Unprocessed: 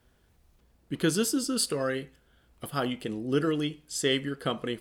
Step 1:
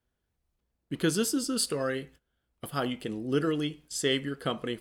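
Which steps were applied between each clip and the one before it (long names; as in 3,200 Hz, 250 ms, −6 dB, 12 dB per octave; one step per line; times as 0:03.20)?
noise gate −51 dBFS, range −15 dB
level −1 dB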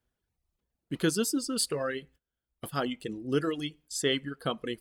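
reverb reduction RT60 1.2 s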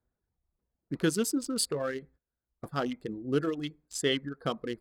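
adaptive Wiener filter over 15 samples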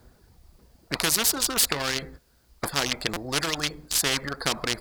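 parametric band 4,700 Hz +7.5 dB 0.33 octaves
buffer that repeats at 0:03.13, samples 256, times 5
every bin compressed towards the loudest bin 4 to 1
level +7 dB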